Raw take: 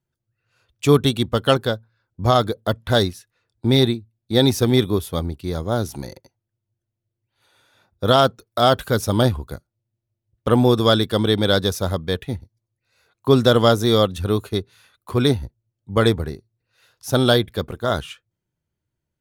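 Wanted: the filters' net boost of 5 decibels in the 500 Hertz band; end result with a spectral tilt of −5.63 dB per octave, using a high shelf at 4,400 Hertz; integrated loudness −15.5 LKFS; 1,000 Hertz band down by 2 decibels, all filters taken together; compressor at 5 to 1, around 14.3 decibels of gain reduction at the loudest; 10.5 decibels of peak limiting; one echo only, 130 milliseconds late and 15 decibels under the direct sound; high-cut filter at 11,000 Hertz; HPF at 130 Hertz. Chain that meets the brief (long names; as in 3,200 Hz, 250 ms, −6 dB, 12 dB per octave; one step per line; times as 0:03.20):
high-pass filter 130 Hz
low-pass filter 11,000 Hz
parametric band 500 Hz +7.5 dB
parametric band 1,000 Hz −6 dB
high-shelf EQ 4,400 Hz −6.5 dB
downward compressor 5 to 1, threshold −22 dBFS
brickwall limiter −19.5 dBFS
single-tap delay 130 ms −15 dB
level +16.5 dB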